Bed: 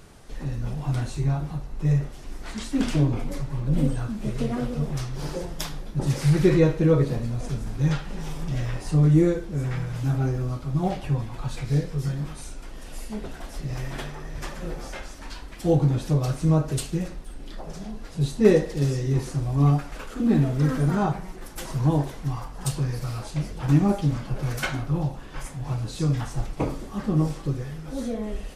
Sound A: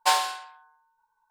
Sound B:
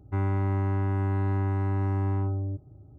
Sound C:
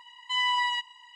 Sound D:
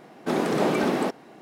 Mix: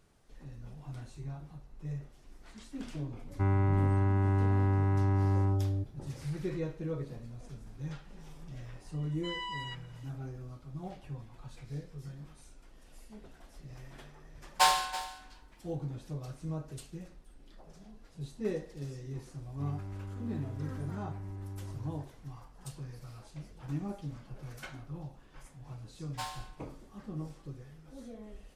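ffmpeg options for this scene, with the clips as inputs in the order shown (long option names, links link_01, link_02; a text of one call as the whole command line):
ffmpeg -i bed.wav -i cue0.wav -i cue1.wav -i cue2.wav -filter_complex "[2:a]asplit=2[link_01][link_02];[1:a]asplit=2[link_03][link_04];[0:a]volume=-17.5dB[link_05];[link_03]aecho=1:1:328:0.188[link_06];[link_02]equalizer=frequency=1400:width=0.38:gain=-7[link_07];[link_01]atrim=end=2.98,asetpts=PTS-STARTPTS,volume=-1dB,afade=type=in:duration=0.004:curve=hsin,afade=type=out:start_time=2.976:duration=0.004:curve=hsin,adelay=3270[link_08];[3:a]atrim=end=1.15,asetpts=PTS-STARTPTS,volume=-13.5dB,afade=type=in:duration=0.004:curve=hsin,afade=type=out:start_time=1.146:duration=0.004:curve=hsin,adelay=8940[link_09];[link_06]atrim=end=1.3,asetpts=PTS-STARTPTS,volume=-2.5dB,afade=type=in:duration=0.004:curve=hsin,afade=type=out:start_time=1.296:duration=0.004:curve=hsin,adelay=14540[link_10];[link_07]atrim=end=2.98,asetpts=PTS-STARTPTS,volume=-15dB,afade=type=in:duration=0.004:curve=hsin,afade=type=out:start_time=2.976:duration=0.004:curve=hsin,adelay=19470[link_11];[link_04]atrim=end=1.3,asetpts=PTS-STARTPTS,volume=-18dB,afade=type=in:duration=0.004:curve=hsin,afade=type=out:start_time=1.296:duration=0.004:curve=hsin,adelay=26120[link_12];[link_05][link_08][link_09][link_10][link_11][link_12]amix=inputs=6:normalize=0" out.wav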